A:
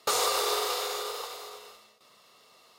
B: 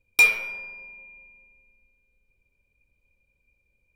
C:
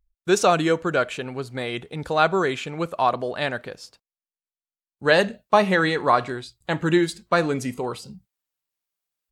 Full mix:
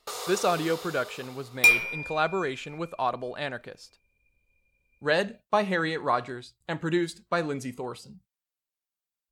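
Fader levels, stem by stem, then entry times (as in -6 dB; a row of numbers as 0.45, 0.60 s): -9.5, -1.0, -7.0 dB; 0.00, 1.45, 0.00 s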